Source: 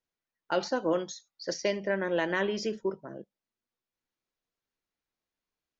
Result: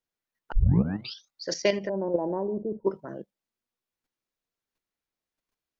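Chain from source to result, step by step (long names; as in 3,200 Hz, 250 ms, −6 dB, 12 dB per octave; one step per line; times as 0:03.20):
0:01.89–0:02.87: elliptic low-pass filter 920 Hz, stop band 60 dB
output level in coarse steps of 9 dB
0:00.52: tape start 0.77 s
level +7 dB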